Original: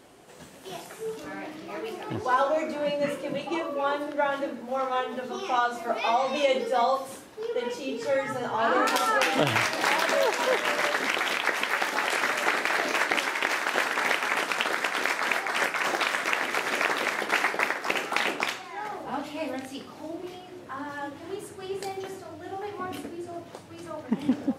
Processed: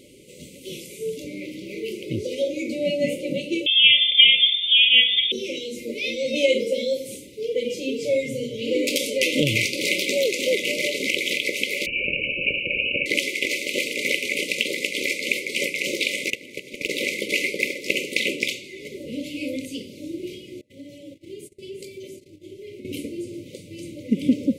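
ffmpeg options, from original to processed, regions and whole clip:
-filter_complex "[0:a]asettb=1/sr,asplit=3[a][b][c];[a]atrim=end=3.664[d];[b]atrim=start=3.66:end=5.32,asetpts=PTS-STARTPTS,afade=t=in:d=0.004:c=qsin,afade=t=out:st=1.656:d=0.004:c=qsin,lowshelf=f=120:g=10,acontrast=56,lowpass=f=3.2k:t=q:w=0.5098,lowpass=f=3.2k:t=q:w=0.6013,lowpass=f=3.2k:t=q:w=0.9,lowpass=f=3.2k:t=q:w=2.563,afreqshift=-3800[e];[c]atrim=start=5.316[f];[d][e]acrossfade=d=0.004:c1=hsin:c2=qsin[g];[g][f]acrossfade=d=0.004:c1=qsin:c2=hsin,asettb=1/sr,asplit=3[h][i][j];[h]atrim=end=11.864[k];[i]atrim=start=11.86:end=13.06,asetpts=PTS-STARTPTS,afade=t=in:d=0.004:c=qsin,afade=t=out:st=1.196:d=0.004:c=qsin,asuperstop=centerf=1400:order=20:qfactor=1.5,highshelf=f=2.1k:g=8,lowpass=f=2.7k:t=q:w=0.5098,lowpass=f=2.7k:t=q:w=0.6013,lowpass=f=2.7k:t=q:w=0.9,lowpass=f=2.7k:t=q:w=2.563,afreqshift=-3200[l];[j]atrim=start=13.056[m];[k][l]acrossfade=d=0.004:c1=hsin:c2=qsin[n];[n][m]acrossfade=d=0.004:c1=qsin:c2=hsin,asettb=1/sr,asplit=3[o][p][q];[o]atrim=end=16.304[r];[p]atrim=start=16.3:end=16.89,asetpts=PTS-STARTPTS,afade=t=in:d=0.004:c=qsin,afade=t=out:st=0.586:d=0.004:c=qsin,agate=range=-16dB:threshold=-25dB:ratio=16:release=100:detection=peak,lowshelf=f=260:g=10,asoftclip=type=hard:threshold=-17dB[s];[q]atrim=start=16.886[t];[r][s]acrossfade=d=0.004:c1=hsin:c2=qsin[u];[u][t]acrossfade=d=0.004:c1=qsin:c2=hsin,asettb=1/sr,asplit=3[v][w][x];[v]atrim=end=20.614[y];[w]atrim=start=20.61:end=22.85,asetpts=PTS-STARTPTS,afade=t=in:d=0.004:c=qsin,afade=t=out:st=2.236:d=0.004:c=qsin,agate=range=-27dB:threshold=-41dB:ratio=16:release=100:detection=peak,acompressor=threshold=-45dB:ratio=2:attack=3.2:release=140:knee=1:detection=peak[z];[x]atrim=start=22.846[aa];[y][z]acrossfade=d=0.004:c1=hsin:c2=qsin[ab];[ab][aa]acrossfade=d=0.004:c1=qsin:c2=hsin,equalizer=f=850:t=o:w=1.6:g=-3.5,afftfilt=real='re*(1-between(b*sr/4096,600,2000))':imag='im*(1-between(b*sr/4096,600,2000))':win_size=4096:overlap=0.75,equalizer=f=5.4k:t=o:w=0.24:g=-3,volume=6.5dB"

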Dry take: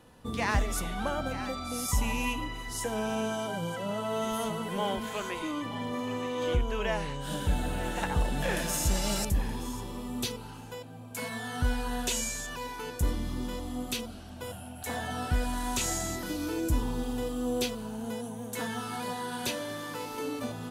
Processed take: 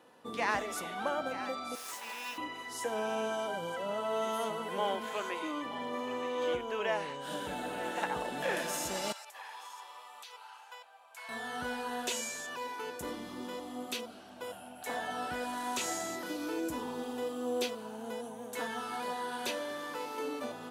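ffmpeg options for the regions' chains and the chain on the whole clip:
-filter_complex "[0:a]asettb=1/sr,asplit=3[a][b][c];[a]atrim=end=1.754[d];[b]atrim=start=1.75:end=2.38,asetpts=PTS-STARTPTS,afade=t=in:d=0.004:c=qsin,afade=t=out:st=0.626:d=0.004:c=qsin,highpass=730,acrusher=bits=4:dc=4:mix=0:aa=0.000001[e];[c]atrim=start=2.376[f];[d][e]acrossfade=d=0.004:c1=hsin:c2=qsin[g];[g][f]acrossfade=d=0.004:c1=qsin:c2=hsin,asettb=1/sr,asplit=3[h][i][j];[h]atrim=end=9.124[k];[i]atrim=start=9.12:end=11.29,asetpts=PTS-STARTPTS,afade=t=in:d=0.004:c=qsin,afade=t=out:st=2.166:d=0.004:c=qsin,highpass=f=790:w=0.5412,highpass=f=790:w=1.3066,acompressor=threshold=-39dB:ratio=10:attack=3.2:release=140:knee=1:detection=peak,highshelf=f=6.6k:g=-6[l];[j]atrim=start=11.286[m];[k][l]acrossfade=d=0.004:c1=hsin:c2=qsin[n];[n][m]acrossfade=d=0.004:c1=qsin:c2=hsin,highpass=350,highshelf=f=3.8k:g=-7.5"

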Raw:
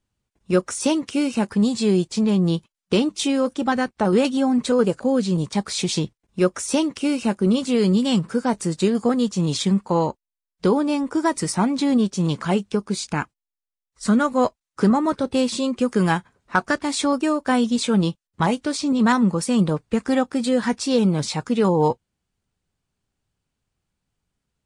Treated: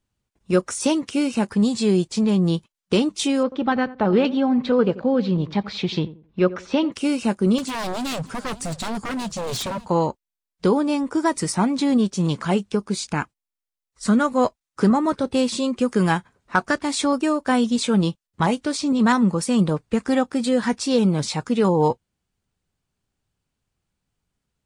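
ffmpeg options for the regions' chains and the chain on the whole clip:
-filter_complex "[0:a]asettb=1/sr,asplit=3[a][b][c];[a]atrim=end=3.434[d];[b]atrim=start=3.43:end=6.92,asetpts=PTS-STARTPTS,afade=t=in:d=0.004:c=qsin,afade=t=out:st=3.486:d=0.004:c=qsin,lowpass=f=3.9k:w=0.5412,lowpass=f=3.9k:w=1.3066,asplit=2[e][f];[f]adelay=88,lowpass=f=1.1k:p=1,volume=-15.5dB,asplit=2[g][h];[h]adelay=88,lowpass=f=1.1k:p=1,volume=0.27,asplit=2[i][j];[j]adelay=88,lowpass=f=1.1k:p=1,volume=0.27[k];[e][g][i][k]amix=inputs=4:normalize=0,atrim=end_sample=153909[l];[c]atrim=start=6.916[m];[d][l]acrossfade=d=0.004:c1=hsin:c2=qsin[n];[n][m]acrossfade=d=0.004:c1=qsin:c2=hsin,asettb=1/sr,asplit=3[o][p][q];[o]atrim=end=7.584[r];[p]atrim=start=7.58:end=9.88,asetpts=PTS-STARTPTS,afade=t=in:d=0.004:c=qsin,afade=t=out:st=2.296:d=0.004:c=qsin,asubboost=boost=11:cutoff=110,aeval=exprs='0.0794*(abs(mod(val(0)/0.0794+3,4)-2)-1)':c=same,aecho=1:1:584:0.119,atrim=end_sample=101430[s];[q]atrim=start=9.876[t];[r][s]acrossfade=d=0.004:c1=hsin:c2=qsin[u];[u][t]acrossfade=d=0.004:c1=qsin:c2=hsin"

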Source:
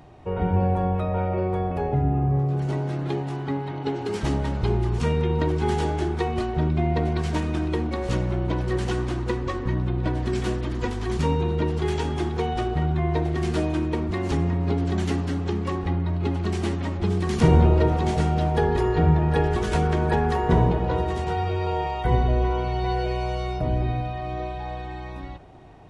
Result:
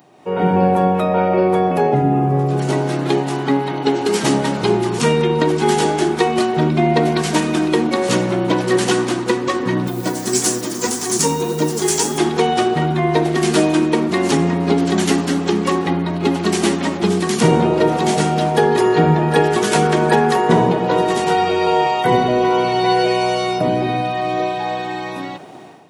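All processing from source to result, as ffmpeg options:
-filter_complex "[0:a]asettb=1/sr,asplit=3[a][b][c];[a]atrim=end=9.874[d];[b]atrim=start=9.87:end=12.18,asetpts=PTS-STARTPTS,afade=t=in:d=0.004:c=qsin,afade=t=out:st=2.306:d=0.004:c=qsin,highshelf=f=4.6k:t=q:w=1.5:g=11.5,flanger=delay=6.6:depth=5.1:regen=48:speed=1.7:shape=sinusoidal,acrusher=bits=8:mix=0:aa=0.5[e];[c]atrim=start=12.176[f];[d][e]acrossfade=d=0.004:c1=hsin:c2=qsin[g];[g][f]acrossfade=d=0.004:c1=qsin:c2=hsin,highpass=f=170:w=0.5412,highpass=f=170:w=1.3066,aemphasis=mode=production:type=50kf,dynaudnorm=f=120:g=5:m=12dB"

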